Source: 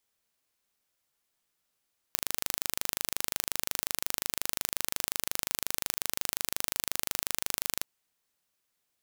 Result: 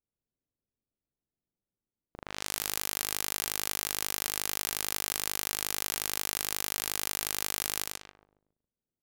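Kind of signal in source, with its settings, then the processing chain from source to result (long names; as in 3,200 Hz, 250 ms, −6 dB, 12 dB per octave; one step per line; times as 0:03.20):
impulse train 25.6 per second, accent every 0, −2 dBFS 5.69 s
on a send: repeating echo 138 ms, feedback 44%, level −3.5 dB
on the sum: low-pass that shuts in the quiet parts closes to 300 Hz, open at −38 dBFS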